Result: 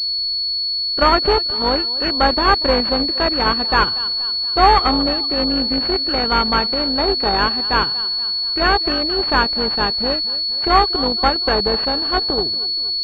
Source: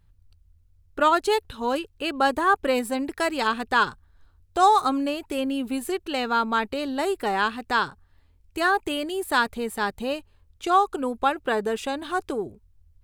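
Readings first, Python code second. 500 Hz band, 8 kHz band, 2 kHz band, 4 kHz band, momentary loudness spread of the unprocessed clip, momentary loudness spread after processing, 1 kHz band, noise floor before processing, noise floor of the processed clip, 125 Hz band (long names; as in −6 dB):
+5.5 dB, below −10 dB, +4.5 dB, +19.5 dB, 10 LU, 4 LU, +5.0 dB, −60 dBFS, −22 dBFS, can't be measured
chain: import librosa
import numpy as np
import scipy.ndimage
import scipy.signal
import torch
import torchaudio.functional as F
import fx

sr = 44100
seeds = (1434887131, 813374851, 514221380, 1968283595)

p1 = x + fx.echo_feedback(x, sr, ms=237, feedback_pct=53, wet_db=-18, dry=0)
p2 = (np.kron(p1[::2], np.eye(2)[0]) * 2)[:len(p1)]
p3 = fx.pwm(p2, sr, carrier_hz=4400.0)
y = p3 * 10.0 ** (5.0 / 20.0)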